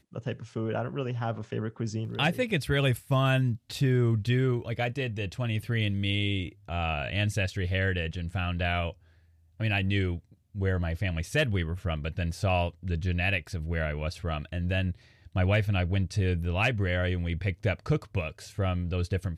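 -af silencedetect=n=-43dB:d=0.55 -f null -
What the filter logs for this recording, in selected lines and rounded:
silence_start: 8.92
silence_end: 9.60 | silence_duration: 0.68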